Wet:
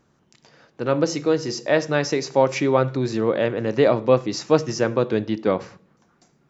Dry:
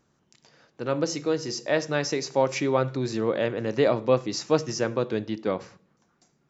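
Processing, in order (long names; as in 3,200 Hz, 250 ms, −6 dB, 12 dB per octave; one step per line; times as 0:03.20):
high-shelf EQ 4,400 Hz −6 dB
in parallel at +3 dB: speech leveller 2 s
on the sum: level −2.5 dB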